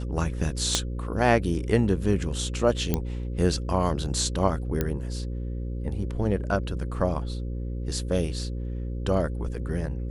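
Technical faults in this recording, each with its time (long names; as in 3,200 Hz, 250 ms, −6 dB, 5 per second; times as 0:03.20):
mains buzz 60 Hz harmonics 9 −31 dBFS
0:00.75: click −7 dBFS
0:02.94: click −10 dBFS
0:04.81: click −11 dBFS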